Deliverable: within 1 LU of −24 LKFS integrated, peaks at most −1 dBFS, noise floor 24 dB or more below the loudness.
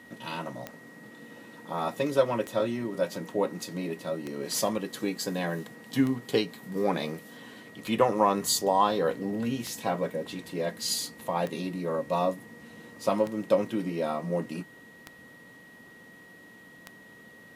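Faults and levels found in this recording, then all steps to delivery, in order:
number of clicks 10; interfering tone 1,900 Hz; level of the tone −51 dBFS; integrated loudness −29.5 LKFS; sample peak −10.0 dBFS; target loudness −24.0 LKFS
→ click removal
notch filter 1,900 Hz, Q 30
level +5.5 dB

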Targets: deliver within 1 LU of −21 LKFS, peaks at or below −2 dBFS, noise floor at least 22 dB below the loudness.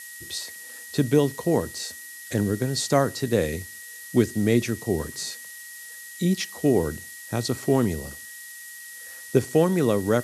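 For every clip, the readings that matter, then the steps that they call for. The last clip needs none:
interfering tone 1,900 Hz; level of the tone −42 dBFS; background noise floor −41 dBFS; target noise floor −47 dBFS; integrated loudness −25.0 LKFS; sample peak −5.0 dBFS; target loudness −21.0 LKFS
→ notch filter 1,900 Hz, Q 30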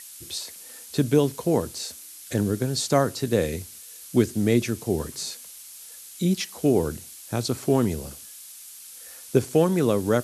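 interfering tone none found; background noise floor −44 dBFS; target noise floor −47 dBFS
→ broadband denoise 6 dB, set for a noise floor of −44 dBFS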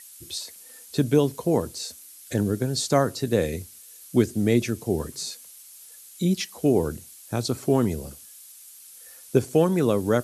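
background noise floor −47 dBFS; integrated loudness −25.0 LKFS; sample peak −5.0 dBFS; target loudness −21.0 LKFS
→ level +4 dB
brickwall limiter −2 dBFS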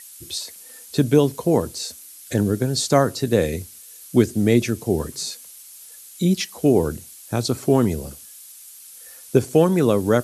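integrated loudness −21.0 LKFS; sample peak −2.0 dBFS; background noise floor −43 dBFS

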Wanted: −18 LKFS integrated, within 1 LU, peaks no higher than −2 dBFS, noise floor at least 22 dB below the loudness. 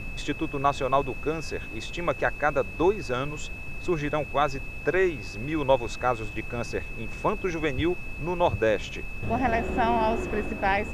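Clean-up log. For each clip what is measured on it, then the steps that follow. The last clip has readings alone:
interfering tone 2,600 Hz; level of the tone −39 dBFS; background noise floor −37 dBFS; target noise floor −50 dBFS; integrated loudness −27.5 LKFS; sample peak −7.5 dBFS; target loudness −18.0 LKFS
→ notch filter 2,600 Hz, Q 30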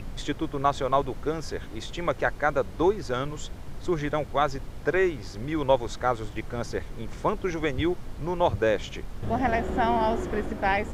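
interfering tone none found; background noise floor −39 dBFS; target noise floor −50 dBFS
→ noise reduction from a noise print 11 dB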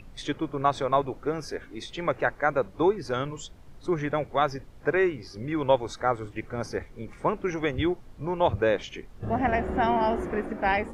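background noise floor −49 dBFS; target noise floor −50 dBFS
→ noise reduction from a noise print 6 dB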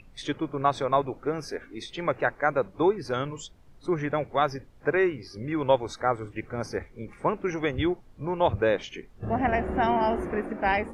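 background noise floor −53 dBFS; integrated loudness −28.0 LKFS; sample peak −8.0 dBFS; target loudness −18.0 LKFS
→ level +10 dB
brickwall limiter −2 dBFS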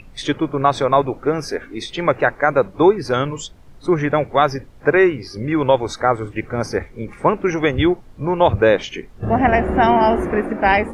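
integrated loudness −18.5 LKFS; sample peak −2.0 dBFS; background noise floor −43 dBFS

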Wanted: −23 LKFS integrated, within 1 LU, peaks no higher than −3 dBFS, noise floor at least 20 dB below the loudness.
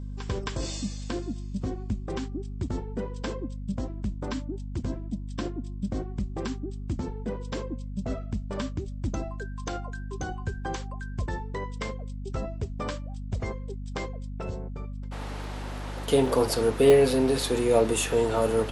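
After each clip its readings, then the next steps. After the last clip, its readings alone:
number of dropouts 3; longest dropout 1.6 ms; mains hum 50 Hz; hum harmonics up to 250 Hz; level of the hum −33 dBFS; integrated loudness −30.0 LKFS; sample peak −8.5 dBFS; target loudness −23.0 LKFS
→ repair the gap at 0:15.44/0:16.26/0:16.90, 1.6 ms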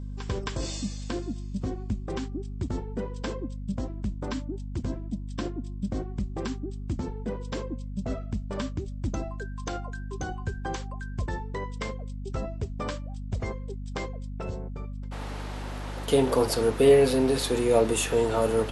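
number of dropouts 0; mains hum 50 Hz; hum harmonics up to 250 Hz; level of the hum −33 dBFS
→ mains-hum notches 50/100/150/200/250 Hz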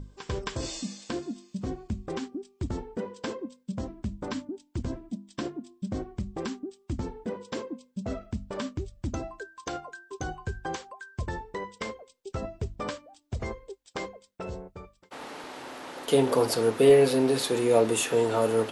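mains hum none found; integrated loudness −30.0 LKFS; sample peak −9.0 dBFS; target loudness −23.0 LKFS
→ level +7 dB
brickwall limiter −3 dBFS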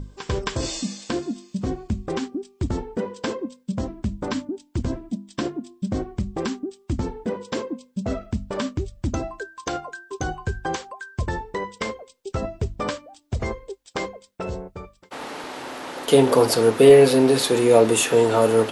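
integrated loudness −23.0 LKFS; sample peak −3.0 dBFS; background noise floor −59 dBFS

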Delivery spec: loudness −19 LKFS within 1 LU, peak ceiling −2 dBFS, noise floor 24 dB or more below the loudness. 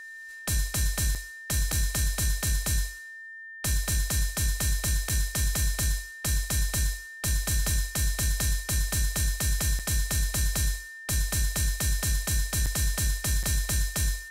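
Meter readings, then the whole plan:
number of dropouts 6; longest dropout 5.6 ms; interfering tone 1,800 Hz; level of the tone −40 dBFS; integrated loudness −28.0 LKFS; sample peak −15.5 dBFS; target loudness −19.0 LKFS
→ repair the gap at 0:01.15/0:01.72/0:05.09/0:09.79/0:12.66/0:13.43, 5.6 ms
notch filter 1,800 Hz, Q 30
level +9 dB

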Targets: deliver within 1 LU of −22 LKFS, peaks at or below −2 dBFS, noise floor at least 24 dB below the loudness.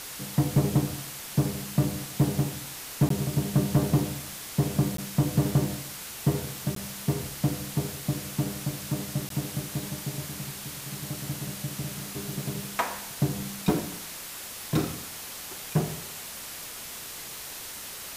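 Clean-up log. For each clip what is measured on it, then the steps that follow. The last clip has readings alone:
number of dropouts 4; longest dropout 13 ms; background noise floor −40 dBFS; target noise floor −54 dBFS; integrated loudness −30.0 LKFS; sample peak −13.0 dBFS; target loudness −22.0 LKFS
→ repair the gap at 0:03.09/0:04.97/0:06.75/0:09.29, 13 ms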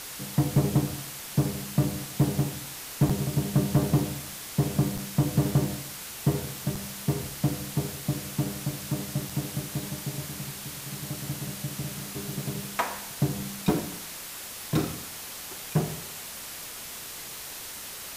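number of dropouts 0; background noise floor −40 dBFS; target noise floor −54 dBFS
→ broadband denoise 14 dB, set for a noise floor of −40 dBFS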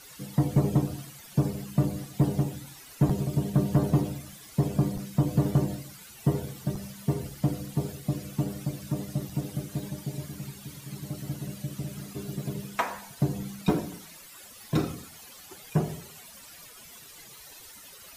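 background noise floor −49 dBFS; target noise floor −54 dBFS
→ broadband denoise 6 dB, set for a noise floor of −49 dBFS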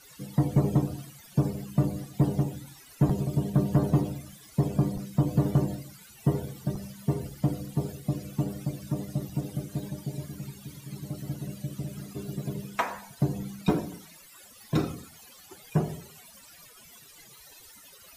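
background noise floor −52 dBFS; target noise floor −54 dBFS
→ broadband denoise 6 dB, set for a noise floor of −52 dBFS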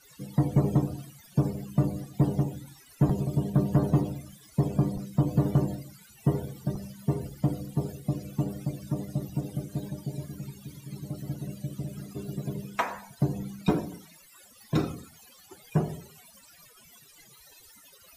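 background noise floor −55 dBFS; integrated loudness −30.0 LKFS; sample peak −13.5 dBFS; target loudness −22.0 LKFS
→ level +8 dB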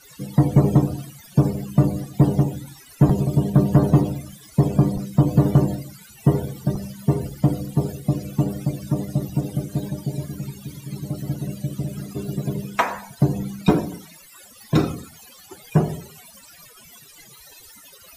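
integrated loudness −22.0 LKFS; sample peak −5.5 dBFS; background noise floor −47 dBFS

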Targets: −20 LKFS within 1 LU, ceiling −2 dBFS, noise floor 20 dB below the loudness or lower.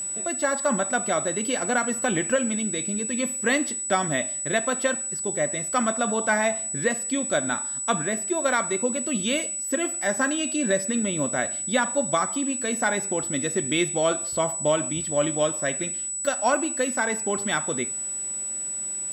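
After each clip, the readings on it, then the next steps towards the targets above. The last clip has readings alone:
interfering tone 7,900 Hz; level of the tone −28 dBFS; integrated loudness −24.5 LKFS; sample peak −10.5 dBFS; target loudness −20.0 LKFS
→ notch filter 7,900 Hz, Q 30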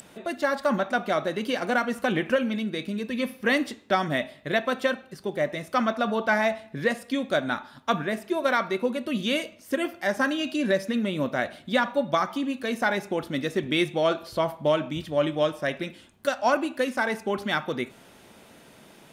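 interfering tone none found; integrated loudness −27.0 LKFS; sample peak −11.5 dBFS; target loudness −20.0 LKFS
→ level +7 dB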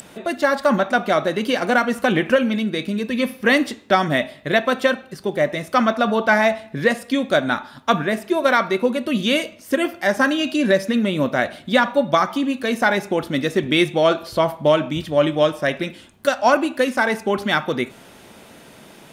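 integrated loudness −20.0 LKFS; sample peak −4.5 dBFS; background noise floor −46 dBFS

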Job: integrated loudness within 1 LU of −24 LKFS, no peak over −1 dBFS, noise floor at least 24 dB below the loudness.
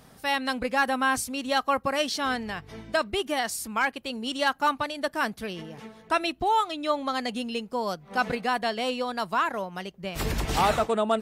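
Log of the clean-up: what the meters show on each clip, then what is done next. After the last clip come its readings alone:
integrated loudness −27.5 LKFS; sample peak −13.5 dBFS; target loudness −24.0 LKFS
→ level +3.5 dB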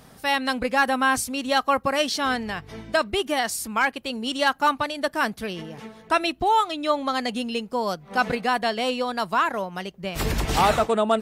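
integrated loudness −24.0 LKFS; sample peak −10.0 dBFS; background noise floor −50 dBFS

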